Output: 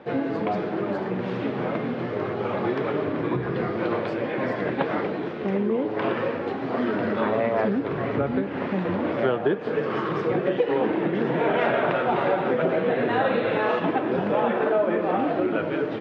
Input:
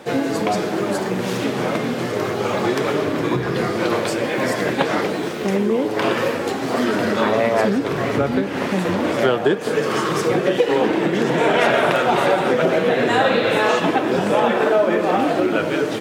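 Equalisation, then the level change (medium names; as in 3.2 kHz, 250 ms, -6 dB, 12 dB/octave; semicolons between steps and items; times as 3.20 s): distance through air 330 m; treble shelf 6.3 kHz -6.5 dB; -4.5 dB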